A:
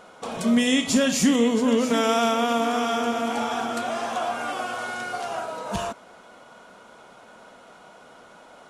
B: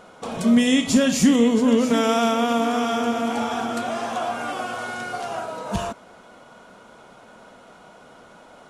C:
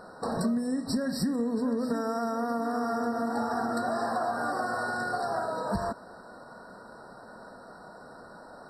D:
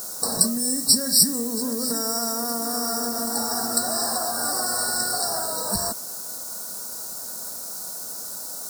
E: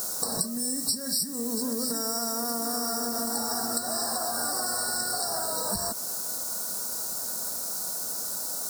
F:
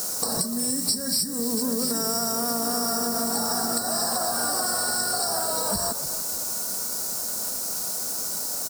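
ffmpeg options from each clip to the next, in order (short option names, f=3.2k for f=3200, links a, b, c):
-af "lowshelf=f=280:g=6.5"
-af "acompressor=threshold=-25dB:ratio=16,afftfilt=real='re*eq(mod(floor(b*sr/1024/1900),2),0)':imag='im*eq(mod(floor(b*sr/1024/1900),2),0)':win_size=1024:overlap=0.75"
-af "acrusher=bits=8:mix=0:aa=0.000001,aexciter=amount=9.2:drive=9:freq=4.5k"
-af "acompressor=threshold=-28dB:ratio=6,volume=2dB"
-filter_complex "[0:a]acrossover=split=400|7800[a][b][c];[c]asoftclip=type=hard:threshold=-30.5dB[d];[a][b][d]amix=inputs=3:normalize=0,asplit=4[e][f][g][h];[f]adelay=296,afreqshift=-54,volume=-13.5dB[i];[g]adelay=592,afreqshift=-108,volume=-23.1dB[j];[h]adelay=888,afreqshift=-162,volume=-32.8dB[k];[e][i][j][k]amix=inputs=4:normalize=0,volume=4dB"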